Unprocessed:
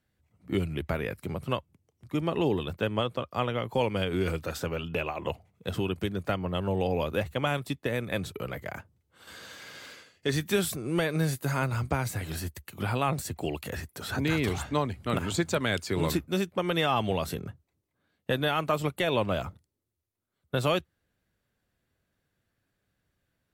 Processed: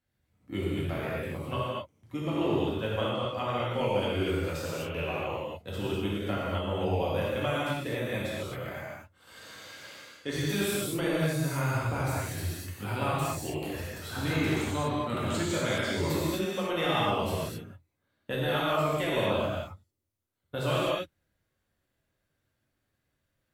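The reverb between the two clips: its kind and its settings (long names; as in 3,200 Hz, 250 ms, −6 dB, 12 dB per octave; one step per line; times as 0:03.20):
reverb whose tail is shaped and stops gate 280 ms flat, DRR −7.5 dB
level −8.5 dB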